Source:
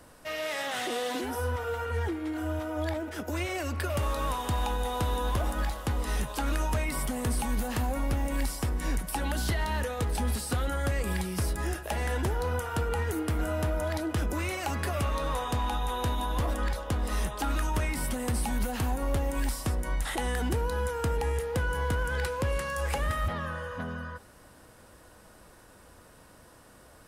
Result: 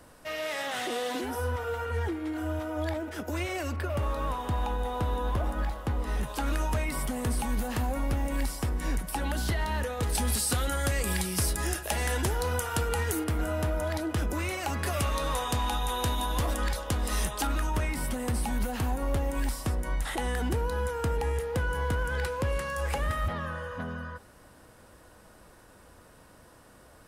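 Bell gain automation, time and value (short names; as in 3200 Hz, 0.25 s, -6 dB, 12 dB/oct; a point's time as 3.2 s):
bell 9300 Hz 2.9 oct
-1 dB
from 3.76 s -10 dB
from 6.23 s -1.5 dB
from 10.03 s +9 dB
from 13.24 s +0.5 dB
from 14.86 s +7 dB
from 17.47 s -2 dB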